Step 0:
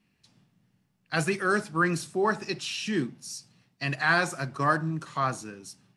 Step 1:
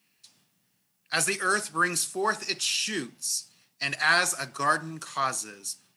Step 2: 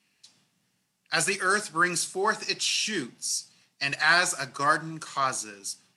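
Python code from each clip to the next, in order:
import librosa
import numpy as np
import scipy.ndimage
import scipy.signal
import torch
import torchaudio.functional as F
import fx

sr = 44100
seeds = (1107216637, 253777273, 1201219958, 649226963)

y1 = fx.riaa(x, sr, side='recording')
y2 = scipy.signal.sosfilt(scipy.signal.butter(2, 9100.0, 'lowpass', fs=sr, output='sos'), y1)
y2 = y2 * librosa.db_to_amplitude(1.0)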